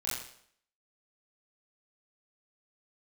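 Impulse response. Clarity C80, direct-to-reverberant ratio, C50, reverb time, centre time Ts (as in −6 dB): 4.5 dB, −8.0 dB, 1.5 dB, 0.65 s, 59 ms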